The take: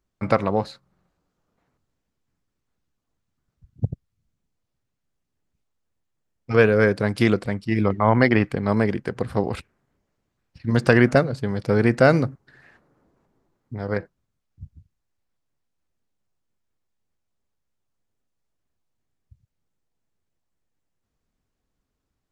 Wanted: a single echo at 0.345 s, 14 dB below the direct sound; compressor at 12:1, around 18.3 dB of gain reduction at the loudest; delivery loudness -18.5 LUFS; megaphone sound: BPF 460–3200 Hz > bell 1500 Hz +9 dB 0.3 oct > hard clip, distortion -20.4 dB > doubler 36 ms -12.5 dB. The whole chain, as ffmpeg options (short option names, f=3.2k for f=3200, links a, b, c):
-filter_complex "[0:a]acompressor=threshold=-29dB:ratio=12,highpass=460,lowpass=3.2k,equalizer=f=1.5k:t=o:w=0.3:g=9,aecho=1:1:345:0.2,asoftclip=type=hard:threshold=-24dB,asplit=2[a][b];[b]adelay=36,volume=-12.5dB[c];[a][c]amix=inputs=2:normalize=0,volume=20dB"